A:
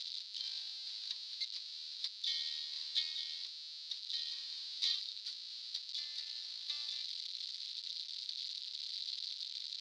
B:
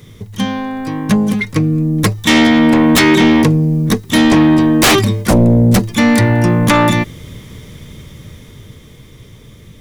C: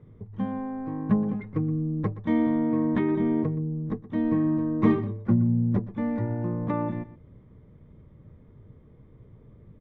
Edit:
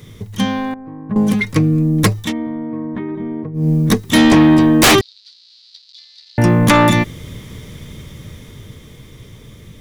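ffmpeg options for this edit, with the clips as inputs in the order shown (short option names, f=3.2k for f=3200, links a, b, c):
-filter_complex "[2:a]asplit=2[a][b];[1:a]asplit=4[c][d][e][f];[c]atrim=end=0.742[g];[a]atrim=start=0.738:end=1.162[h];[d]atrim=start=1.158:end=2.33[i];[b]atrim=start=2.17:end=3.69[j];[e]atrim=start=3.53:end=5.012[k];[0:a]atrim=start=5.008:end=6.382[l];[f]atrim=start=6.378[m];[g][h]acrossfade=d=0.004:c1=hsin:c2=hsin[n];[n][i]acrossfade=d=0.004:c1=hsin:c2=hsin[o];[o][j]acrossfade=d=0.16:c1=tri:c2=tri[p];[p][k]acrossfade=d=0.16:c1=tri:c2=tri[q];[q][l]acrossfade=d=0.004:c1=hsin:c2=hsin[r];[r][m]acrossfade=d=0.004:c1=hsin:c2=hsin"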